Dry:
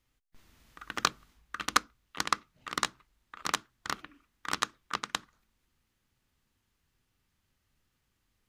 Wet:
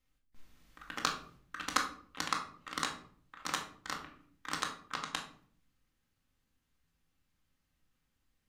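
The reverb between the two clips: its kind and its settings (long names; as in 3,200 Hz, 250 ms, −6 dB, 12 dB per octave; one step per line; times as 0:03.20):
rectangular room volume 640 cubic metres, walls furnished, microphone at 2.1 metres
level −6.5 dB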